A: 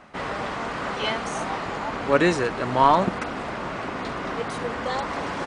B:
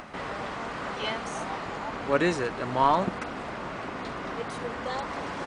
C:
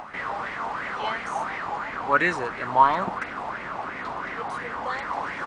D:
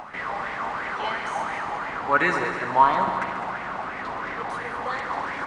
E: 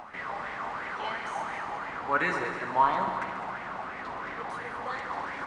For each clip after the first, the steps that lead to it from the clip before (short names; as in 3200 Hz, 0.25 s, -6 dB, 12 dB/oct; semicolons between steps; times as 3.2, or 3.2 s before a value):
upward compressor, threshold -29 dBFS; gain -5 dB
LFO bell 2.9 Hz 820–2100 Hz +16 dB; gain -4 dB
multi-head echo 69 ms, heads all three, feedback 57%, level -13 dB
flange 0.83 Hz, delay 8.4 ms, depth 7.1 ms, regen -74%; gain -1.5 dB